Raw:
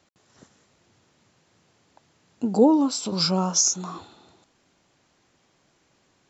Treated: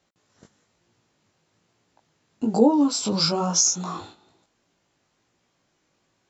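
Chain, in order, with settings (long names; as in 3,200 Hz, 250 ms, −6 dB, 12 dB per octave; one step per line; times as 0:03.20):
noise gate −48 dBFS, range −10 dB
in parallel at +3 dB: downward compressor, threshold −26 dBFS, peak gain reduction 14 dB
on the sum: chorus effect 1.1 Hz, delay 17 ms, depth 2.7 ms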